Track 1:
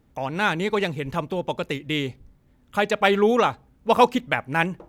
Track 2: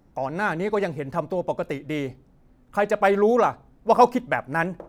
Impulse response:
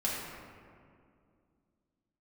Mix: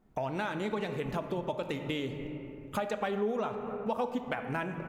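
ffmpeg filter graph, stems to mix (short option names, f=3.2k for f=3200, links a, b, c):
-filter_complex "[0:a]acompressor=threshold=-25dB:ratio=6,volume=-2dB,asplit=2[a][b];[b]volume=-10.5dB[c];[1:a]lowpass=f=2.2k:w=0.5412,lowpass=f=2.2k:w=1.3066,asplit=2[d][e];[e]adelay=2.3,afreqshift=-0.9[f];[d][f]amix=inputs=2:normalize=1,volume=-7dB,asplit=3[g][h][i];[h]volume=-14dB[j];[i]apad=whole_len=215612[k];[a][k]sidechaingate=range=-33dB:threshold=-60dB:ratio=16:detection=peak[l];[2:a]atrim=start_sample=2205[m];[c][j]amix=inputs=2:normalize=0[n];[n][m]afir=irnorm=-1:irlink=0[o];[l][g][o]amix=inputs=3:normalize=0,acompressor=threshold=-34dB:ratio=2.5"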